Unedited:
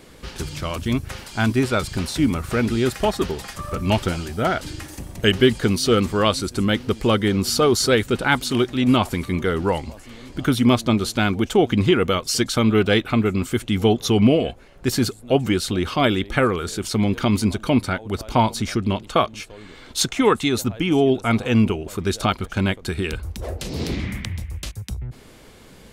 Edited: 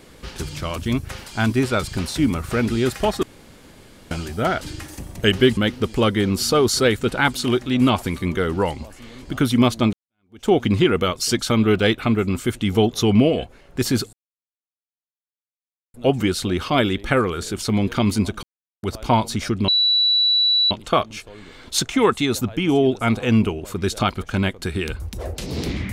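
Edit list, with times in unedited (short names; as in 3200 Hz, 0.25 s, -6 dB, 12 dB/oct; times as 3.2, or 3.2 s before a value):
3.23–4.11 room tone
5.57–6.64 cut
11–11.55 fade in exponential
15.2 insert silence 1.81 s
17.69–18.09 mute
18.94 add tone 3940 Hz -14 dBFS 1.03 s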